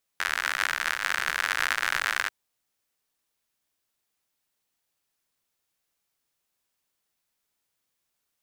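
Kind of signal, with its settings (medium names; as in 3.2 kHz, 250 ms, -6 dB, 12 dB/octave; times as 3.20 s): rain from filtered ticks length 2.09 s, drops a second 88, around 1.6 kHz, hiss -27 dB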